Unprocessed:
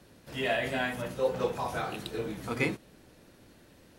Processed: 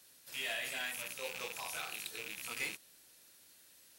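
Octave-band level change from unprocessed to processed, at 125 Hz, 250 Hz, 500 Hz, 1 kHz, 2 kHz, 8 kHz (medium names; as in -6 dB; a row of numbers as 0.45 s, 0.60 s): -24.0 dB, -22.0 dB, -17.5 dB, -13.0 dB, -5.0 dB, +6.0 dB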